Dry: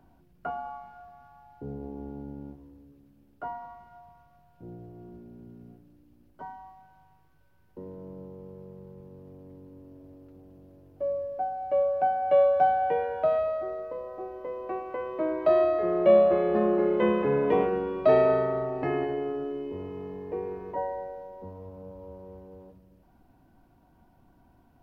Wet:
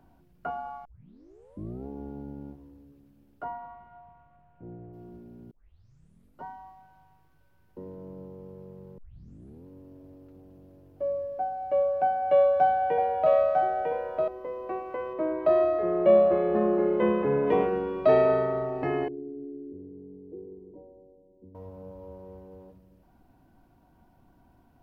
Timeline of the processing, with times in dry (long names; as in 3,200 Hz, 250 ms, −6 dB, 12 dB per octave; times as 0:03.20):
0:00.85: tape start 1.02 s
0:03.44–0:04.92: low-pass filter 3,300 Hz → 2,400 Hz 24 dB per octave
0:05.51: tape start 0.93 s
0:08.98: tape start 0.68 s
0:12.03–0:14.28: single-tap delay 950 ms −3.5 dB
0:15.13–0:17.47: high-shelf EQ 3,100 Hz −9 dB
0:19.08–0:21.55: transistor ladder low-pass 370 Hz, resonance 55%